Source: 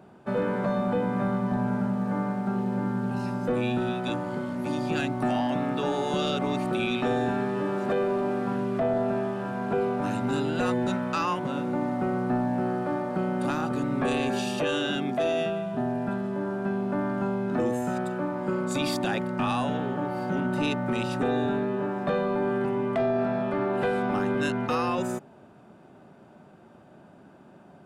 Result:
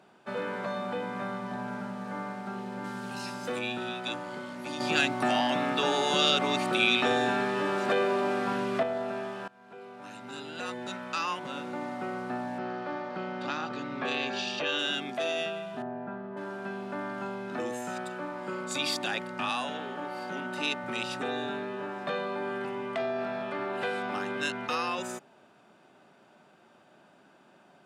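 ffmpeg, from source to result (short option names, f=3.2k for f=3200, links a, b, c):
-filter_complex "[0:a]asettb=1/sr,asplit=3[a][b][c];[a]atrim=end=2.844[d];[b]atrim=start=2.84:end=3.59,asetpts=PTS-STARTPTS,afade=t=in:d=0.004:c=qsin,afade=t=out:st=0.746:d=0.004:c=qsin,highshelf=f=3.2k:g=9.5[e];[c]atrim=start=3.586[f];[d][e]acrossfade=d=0.004:c1=hsin:c2=qsin[g];[g][f]acrossfade=d=0.004:c1=qsin:c2=hsin,asettb=1/sr,asplit=3[h][i][j];[h]atrim=end=4.804[k];[i]atrim=start=4.8:end=8.83,asetpts=PTS-STARTPTS,afade=t=in:d=0.004:c=qsin,afade=t=out:st=4.026:d=0.004:c=qsin,acontrast=62[l];[j]atrim=start=8.826[m];[k][l]acrossfade=d=0.004:c1=hsin:c2=qsin[n];[n][m]acrossfade=d=0.004:c1=qsin:c2=hsin,asettb=1/sr,asplit=3[o][p][q];[o]atrim=end=12.584[r];[p]atrim=start=12.58:end=14.79,asetpts=PTS-STARTPTS,afade=t=in:d=0.004:c=qsin,afade=t=out:st=2.206:d=0.004:c=qsin,lowpass=f=5.5k:w=0.5412,lowpass=f=5.5k:w=1.3066[s];[q]atrim=start=14.786[t];[r][s]acrossfade=d=0.004:c1=hsin:c2=qsin[u];[u][t]acrossfade=d=0.004:c1=qsin:c2=hsin,asettb=1/sr,asplit=3[v][w][x];[v]atrim=end=15.824[y];[w]atrim=start=15.82:end=16.37,asetpts=PTS-STARTPTS,afade=t=in:d=0.004:c=qsin,afade=t=out:st=0.546:d=0.004:c=qsin,lowpass=1.3k[z];[x]atrim=start=16.366[aa];[y][z]acrossfade=d=0.004:c1=hsin:c2=qsin[ab];[ab][aa]acrossfade=d=0.004:c1=qsin:c2=hsin,asettb=1/sr,asplit=3[ac][ad][ae];[ac]atrim=end=19.494[af];[ad]atrim=start=19.49:end=20.84,asetpts=PTS-STARTPTS,afade=t=in:d=0.004:c=qsin,afade=t=out:st=1.346:d=0.004:c=qsin,highpass=170[ag];[ae]atrim=start=20.836[ah];[af][ag]acrossfade=d=0.004:c1=hsin:c2=qsin[ai];[ai][ah]acrossfade=d=0.004:c1=qsin:c2=hsin,asplit=2[aj][ak];[aj]atrim=end=9.48,asetpts=PTS-STARTPTS,afade=t=out:st=9.476:d=0.004:c=hsin:silence=0.0749894[al];[ak]atrim=start=9.48,asetpts=PTS-STARTPTS,afade=t=in:d=2.17:silence=0.0749894[am];[al][am]concat=n=2:v=0:a=1,highpass=f=290:p=1,equalizer=f=4.1k:w=0.34:g=10.5,volume=-7dB"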